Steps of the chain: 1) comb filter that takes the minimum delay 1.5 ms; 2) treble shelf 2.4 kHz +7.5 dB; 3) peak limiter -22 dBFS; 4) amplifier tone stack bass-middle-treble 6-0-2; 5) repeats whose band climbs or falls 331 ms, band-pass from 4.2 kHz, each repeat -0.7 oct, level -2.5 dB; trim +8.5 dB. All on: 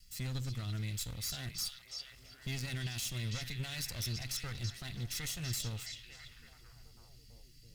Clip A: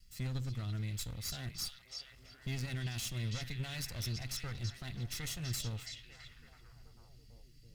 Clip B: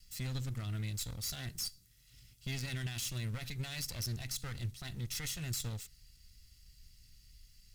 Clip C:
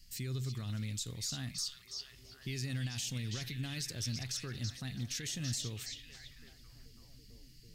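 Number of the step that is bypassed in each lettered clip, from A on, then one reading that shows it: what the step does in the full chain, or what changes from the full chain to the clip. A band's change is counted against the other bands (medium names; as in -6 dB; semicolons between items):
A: 2, 8 kHz band -3.0 dB; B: 5, echo-to-direct -6.0 dB to none; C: 1, 1 kHz band -3.5 dB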